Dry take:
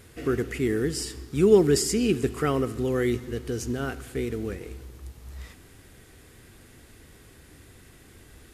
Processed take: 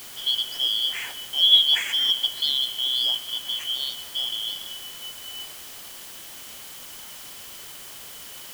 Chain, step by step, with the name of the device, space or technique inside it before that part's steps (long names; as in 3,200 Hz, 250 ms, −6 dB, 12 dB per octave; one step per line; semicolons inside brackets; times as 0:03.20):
split-band scrambled radio (band-splitting scrambler in four parts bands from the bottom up 3412; band-pass filter 320–3,300 Hz; white noise bed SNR 14 dB)
level +3.5 dB